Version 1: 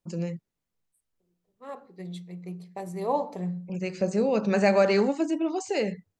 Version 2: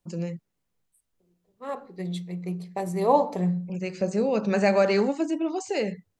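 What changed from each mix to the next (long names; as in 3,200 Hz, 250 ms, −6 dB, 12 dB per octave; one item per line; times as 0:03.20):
second voice +6.5 dB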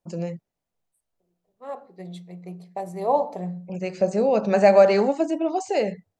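second voice −7.0 dB
master: add parametric band 680 Hz +10 dB 0.78 octaves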